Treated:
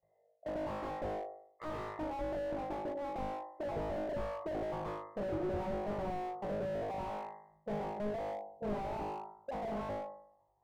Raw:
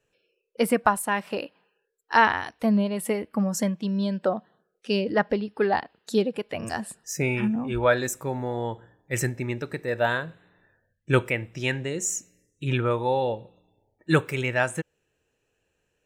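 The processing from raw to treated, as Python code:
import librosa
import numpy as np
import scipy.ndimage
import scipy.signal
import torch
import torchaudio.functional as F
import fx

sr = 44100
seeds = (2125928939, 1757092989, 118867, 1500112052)

p1 = fx.speed_glide(x, sr, from_pct=128, to_pct=174)
p2 = fx.highpass(p1, sr, hz=52.0, slope=6)
p3 = fx.level_steps(p2, sr, step_db=15)
p4 = fx.brickwall_lowpass(p3, sr, high_hz=2100.0)
p5 = fx.fixed_phaser(p4, sr, hz=620.0, stages=4)
p6 = p5 + fx.room_flutter(p5, sr, wall_m=3.3, rt60_s=0.65, dry=0)
p7 = fx.slew_limit(p6, sr, full_power_hz=6.5)
y = p7 * librosa.db_to_amplitude(2.5)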